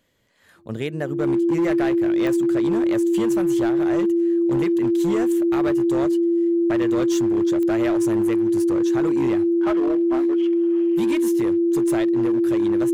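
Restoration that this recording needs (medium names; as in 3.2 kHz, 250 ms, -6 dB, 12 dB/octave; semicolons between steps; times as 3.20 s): clip repair -16 dBFS; de-click; band-stop 340 Hz, Q 30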